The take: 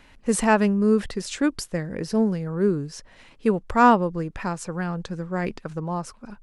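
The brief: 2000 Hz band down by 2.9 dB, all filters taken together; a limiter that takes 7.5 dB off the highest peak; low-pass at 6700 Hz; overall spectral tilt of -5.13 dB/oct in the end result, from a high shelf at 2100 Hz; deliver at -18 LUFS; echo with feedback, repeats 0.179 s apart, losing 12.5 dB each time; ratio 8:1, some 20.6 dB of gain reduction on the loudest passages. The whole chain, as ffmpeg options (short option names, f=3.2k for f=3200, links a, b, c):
-af "lowpass=6.7k,equalizer=f=2k:t=o:g=-8,highshelf=f=2.1k:g=6.5,acompressor=threshold=-33dB:ratio=8,alimiter=level_in=5dB:limit=-24dB:level=0:latency=1,volume=-5dB,aecho=1:1:179|358|537:0.237|0.0569|0.0137,volume=21dB"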